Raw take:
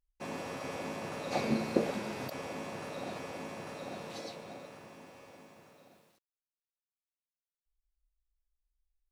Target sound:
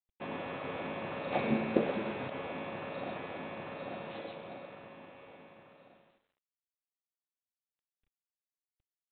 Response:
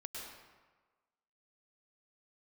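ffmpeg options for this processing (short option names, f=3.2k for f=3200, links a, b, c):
-filter_complex "[0:a]asplit=2[a][b];[1:a]atrim=start_sample=2205,lowshelf=f=120:g=-11.5[c];[b][c]afir=irnorm=-1:irlink=0,volume=-4.5dB[d];[a][d]amix=inputs=2:normalize=0,volume=-1.5dB" -ar 8000 -c:a adpcm_g726 -b:a 32k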